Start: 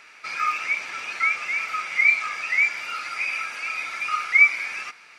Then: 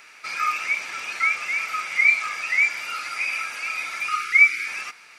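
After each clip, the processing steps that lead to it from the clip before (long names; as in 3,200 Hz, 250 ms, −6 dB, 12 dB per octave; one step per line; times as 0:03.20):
high-shelf EQ 8,600 Hz +12 dB
gain on a spectral selection 0:04.09–0:04.67, 460–1,200 Hz −28 dB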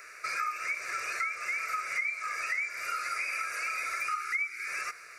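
phaser with its sweep stopped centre 870 Hz, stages 6
downward compressor 8 to 1, threshold −33 dBFS, peak gain reduction 18 dB
level +3 dB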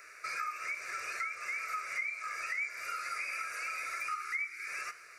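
flanger 0.76 Hz, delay 8.6 ms, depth 7.1 ms, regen +80%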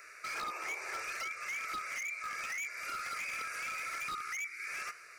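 wave folding −33.5 dBFS
sound drawn into the spectrogram noise, 0:00.34–0:01.03, 320–1,300 Hz −50 dBFS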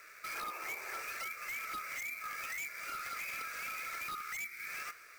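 sample-rate reduction 14,000 Hz, jitter 0%
level −2 dB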